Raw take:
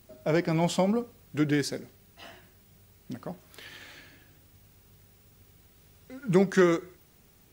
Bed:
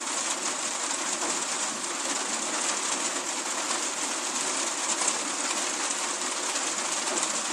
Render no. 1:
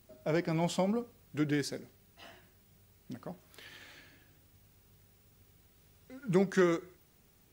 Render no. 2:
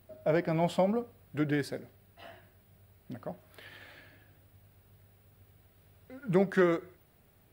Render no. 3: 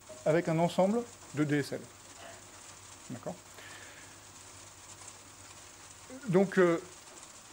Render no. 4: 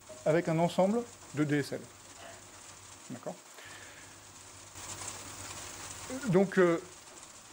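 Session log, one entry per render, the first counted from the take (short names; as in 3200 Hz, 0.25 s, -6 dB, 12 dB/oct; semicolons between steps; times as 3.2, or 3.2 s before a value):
gain -5.5 dB
fifteen-band EQ 100 Hz +6 dB, 630 Hz +7 dB, 1600 Hz +3 dB, 6300 Hz -12 dB
add bed -23 dB
2.98–3.64 HPF 97 Hz -> 310 Hz; 4.75–6.34 sample leveller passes 2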